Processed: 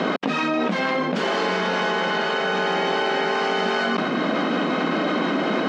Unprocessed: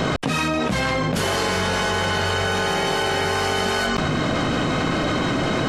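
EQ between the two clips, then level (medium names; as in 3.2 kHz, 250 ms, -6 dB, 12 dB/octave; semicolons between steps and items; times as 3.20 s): brick-wall FIR high-pass 170 Hz; distance through air 180 m; +1.0 dB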